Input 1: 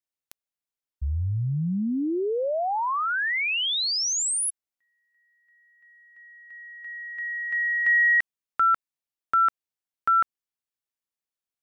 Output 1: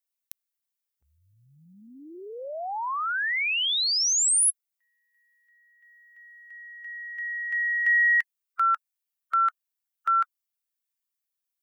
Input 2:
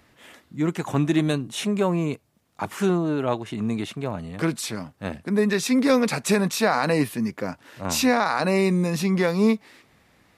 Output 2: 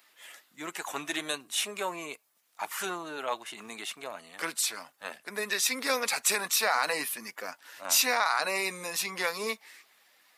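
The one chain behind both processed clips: coarse spectral quantiser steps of 15 dB; Bessel high-pass 1.1 kHz, order 2; treble shelf 9.8 kHz +11 dB

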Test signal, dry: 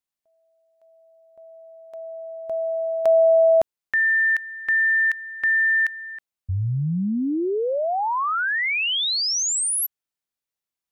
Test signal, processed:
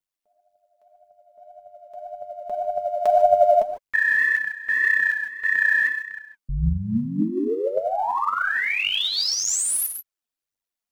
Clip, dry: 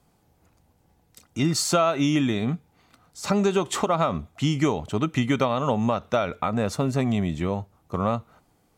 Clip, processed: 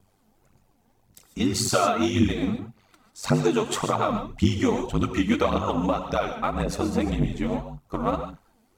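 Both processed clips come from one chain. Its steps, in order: ring modulator 48 Hz; gated-style reverb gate 170 ms rising, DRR 7.5 dB; phaser 1.8 Hz, delay 4.8 ms, feedback 58%

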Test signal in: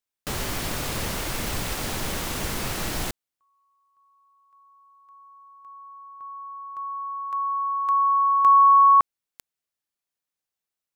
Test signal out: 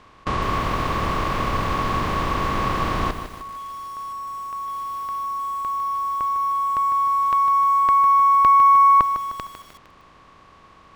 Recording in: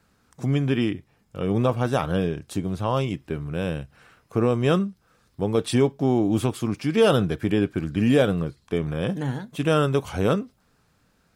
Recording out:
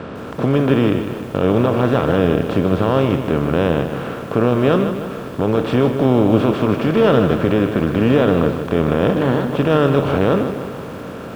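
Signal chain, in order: spectral levelling over time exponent 0.4; Bessel low-pass 2.2 kHz, order 2; Chebyshev shaper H 2 -14 dB, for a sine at -1 dBFS; loudness maximiser +4.5 dB; bit-crushed delay 153 ms, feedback 55%, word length 6-bit, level -9 dB; trim -3 dB

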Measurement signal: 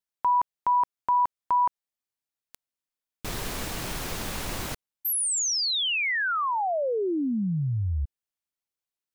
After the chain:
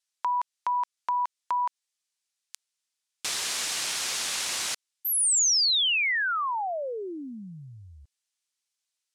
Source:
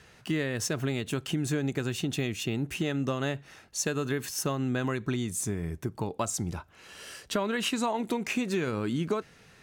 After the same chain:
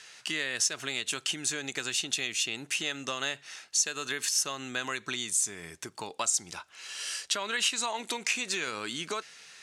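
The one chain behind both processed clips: frequency weighting ITU-R 468; compression 2:1, threshold -28 dBFS

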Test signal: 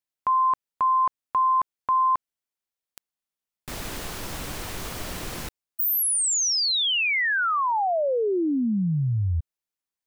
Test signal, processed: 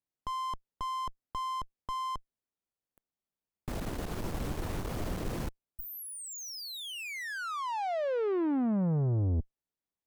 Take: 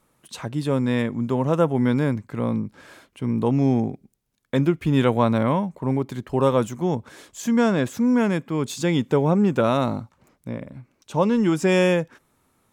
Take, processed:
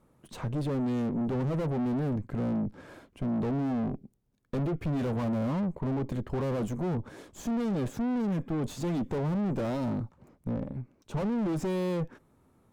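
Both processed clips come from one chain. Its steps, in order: valve stage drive 34 dB, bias 0.65; tilt shelf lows +7.5 dB, about 1.1 kHz

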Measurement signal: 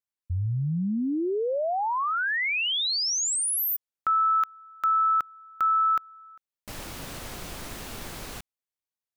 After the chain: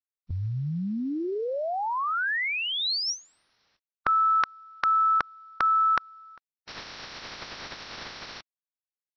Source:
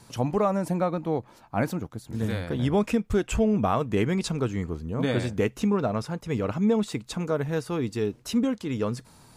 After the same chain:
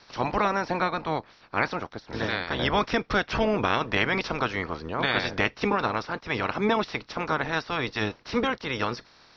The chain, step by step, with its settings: spectral peaks clipped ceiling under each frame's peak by 22 dB; companded quantiser 8-bit; rippled Chebyshev low-pass 5.7 kHz, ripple 3 dB; trim +1.5 dB

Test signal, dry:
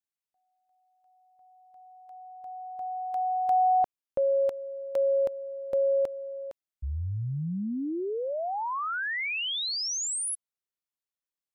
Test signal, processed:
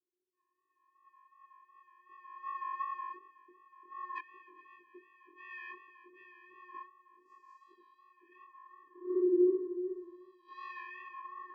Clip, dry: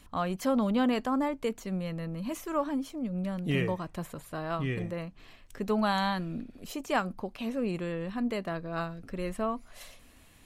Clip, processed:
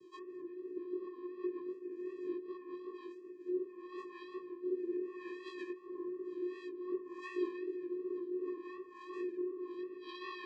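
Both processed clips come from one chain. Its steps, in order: spectrum inverted on a logarithmic axis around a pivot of 960 Hz; flutter echo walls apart 8.2 m, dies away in 0.52 s; compression 4:1, threshold -35 dBFS; ever faster or slower copies 139 ms, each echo -5 st, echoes 2, each echo -6 dB; low-pass that closes with the level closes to 320 Hz, closed at -33 dBFS; vocoder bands 8, square 361 Hz; rotary cabinet horn 0.65 Hz; chorus 2.7 Hz, delay 17 ms, depth 5.7 ms; trim +9 dB

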